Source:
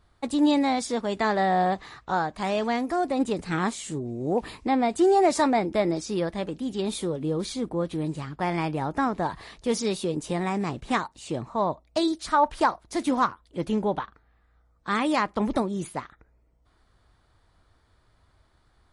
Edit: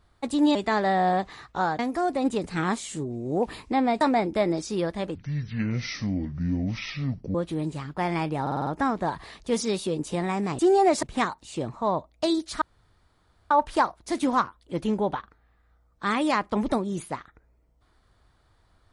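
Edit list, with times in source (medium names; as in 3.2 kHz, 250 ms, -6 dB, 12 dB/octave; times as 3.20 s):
0.55–1.08 s: delete
2.32–2.74 s: delete
4.96–5.40 s: move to 10.76 s
6.54–7.77 s: speed 56%
8.84 s: stutter 0.05 s, 6 plays
12.35 s: insert room tone 0.89 s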